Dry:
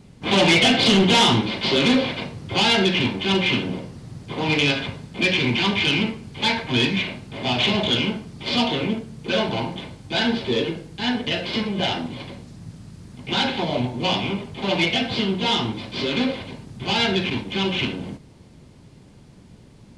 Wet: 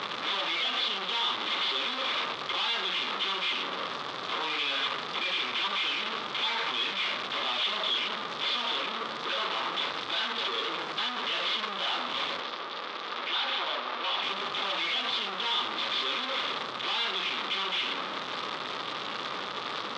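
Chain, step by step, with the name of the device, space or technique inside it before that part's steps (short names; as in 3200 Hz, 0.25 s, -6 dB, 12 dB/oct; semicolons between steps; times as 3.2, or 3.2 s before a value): home computer beeper (infinite clipping; speaker cabinet 550–4300 Hz, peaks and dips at 690 Hz -4 dB, 1200 Hz +10 dB, 3500 Hz +8 dB); 12.4–14.23 three-band isolator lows -18 dB, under 230 Hz, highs -16 dB, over 6100 Hz; gain -7.5 dB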